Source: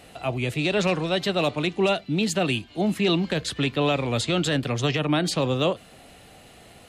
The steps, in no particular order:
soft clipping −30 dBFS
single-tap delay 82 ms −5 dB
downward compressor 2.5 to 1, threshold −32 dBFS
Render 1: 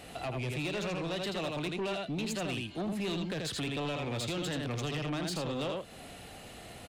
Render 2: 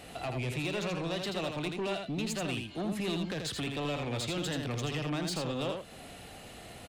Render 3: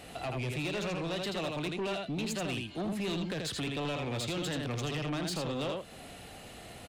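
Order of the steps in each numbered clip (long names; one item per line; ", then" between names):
single-tap delay, then downward compressor, then soft clipping
downward compressor, then soft clipping, then single-tap delay
downward compressor, then single-tap delay, then soft clipping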